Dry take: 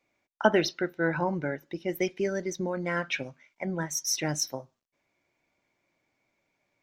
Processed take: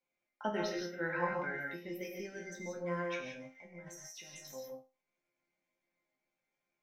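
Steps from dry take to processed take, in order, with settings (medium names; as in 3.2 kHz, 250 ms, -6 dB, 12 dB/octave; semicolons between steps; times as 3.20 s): 0.91–1.79 s: peaking EQ 2.1 kHz +12 dB 2.4 oct; 3.18–4.56 s: compressor with a negative ratio -40 dBFS, ratio -1; chord resonator F3 minor, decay 0.27 s; gated-style reverb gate 200 ms rising, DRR 1 dB; trim +2 dB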